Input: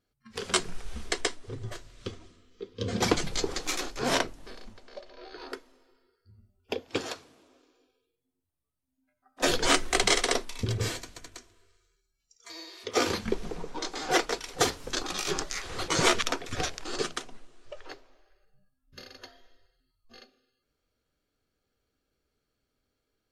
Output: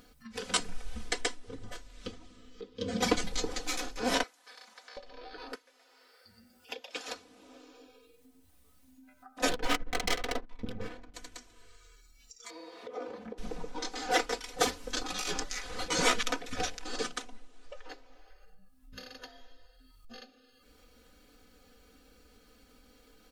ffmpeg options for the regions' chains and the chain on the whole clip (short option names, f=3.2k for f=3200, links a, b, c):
-filter_complex "[0:a]asettb=1/sr,asplit=3[a][b][c];[a]atrim=end=4.234[d];[b]atrim=start=4.23:end=4.97,asetpts=PTS-STARTPTS,afade=t=in:d=0.004:c=qsin,afade=t=out:st=0.736:d=0.004:c=qsin,highpass=970,equalizer=f=2.8k:w=4.3:g=-5[e];[c]atrim=start=4.966[f];[d][e]acrossfade=d=0.004:c1=hsin:c2=qsin[g];[g][f]acrossfade=d=0.004:c1=qsin:c2=hsin,asettb=1/sr,asplit=3[h][i][j];[h]atrim=end=5.554[k];[i]atrim=start=5.55:end=7.08,asetpts=PTS-STARTPTS,afade=t=in:d=0.004:c=qsin,afade=t=out:st=1.526:d=0.004:c=qsin,highpass=f=1.5k:p=1,asplit=5[l][m][n][o][p];[m]adelay=121,afreqshift=140,volume=-7.5dB[q];[n]adelay=242,afreqshift=280,volume=-16.4dB[r];[o]adelay=363,afreqshift=420,volume=-25.2dB[s];[p]adelay=484,afreqshift=560,volume=-34.1dB[t];[l][q][r][s][t]amix=inputs=5:normalize=0,atrim=end_sample=67473[u];[j]atrim=start=7.076[v];[k][u]acrossfade=d=0.004:c1=hsin:c2=qsin[w];[w][v]acrossfade=d=0.004:c1=qsin:c2=hsin,asettb=1/sr,asplit=3[x][y][z];[x]atrim=end=9.494[aa];[y]atrim=start=9.49:end=11.14,asetpts=PTS-STARTPTS,afade=t=in:d=0.004:c=qsin,afade=t=out:st=1.646:d=0.004:c=qsin,aeval=exprs='if(lt(val(0),0),0.251*val(0),val(0))':c=same,adynamicsmooth=sensitivity=3:basefreq=1.3k[ab];[z]atrim=start=11.136[ac];[aa][ab]acrossfade=d=0.004:c1=hsin:c2=qsin[ad];[ad][ac]acrossfade=d=0.004:c1=qsin:c2=hsin,asettb=1/sr,asplit=3[ae][af][ag];[ae]atrim=end=12.504[ah];[af]atrim=start=12.5:end=13.38,asetpts=PTS-STARTPTS,afade=t=in:d=0.004:c=qsin,afade=t=out:st=0.876:d=0.004:c=qsin,aeval=exprs='val(0)+0.5*0.0133*sgn(val(0))':c=same,bandpass=f=540:t=q:w=1.2,acompressor=threshold=-40dB:ratio=2:attack=3.2:release=140:knee=1:detection=peak[ai];[ag]atrim=start=13.376[aj];[ah][ai]acrossfade=d=0.004:c1=hsin:c2=qsin[ak];[ak][aj]acrossfade=d=0.004:c1=qsin:c2=hsin,bandreject=f=1.1k:w=13,aecho=1:1:4:0.89,acompressor=mode=upward:threshold=-35dB:ratio=2.5,volume=-5.5dB"